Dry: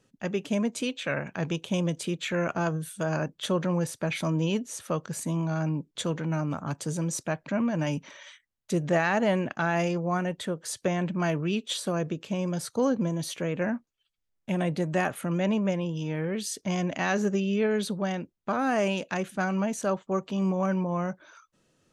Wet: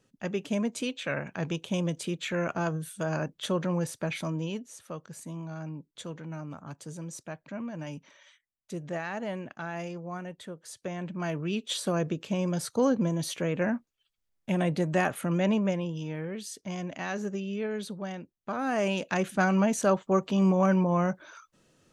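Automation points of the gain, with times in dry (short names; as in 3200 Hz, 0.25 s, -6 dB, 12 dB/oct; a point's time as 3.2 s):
4.02 s -2 dB
4.79 s -10 dB
10.76 s -10 dB
11.87 s +0.5 dB
15.52 s +0.5 dB
16.46 s -7 dB
18.35 s -7 dB
19.31 s +3.5 dB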